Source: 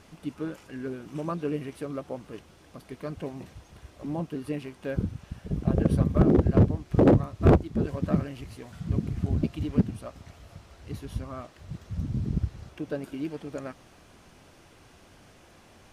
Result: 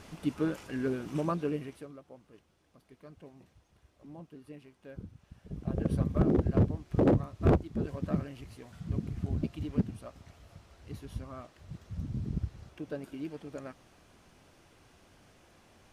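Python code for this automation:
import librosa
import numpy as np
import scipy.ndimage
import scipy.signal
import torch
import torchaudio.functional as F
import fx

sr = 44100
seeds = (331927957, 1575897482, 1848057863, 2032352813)

y = fx.gain(x, sr, db=fx.line((1.11, 3.0), (1.72, -6.0), (1.98, -16.0), (5.12, -16.0), (5.96, -6.0)))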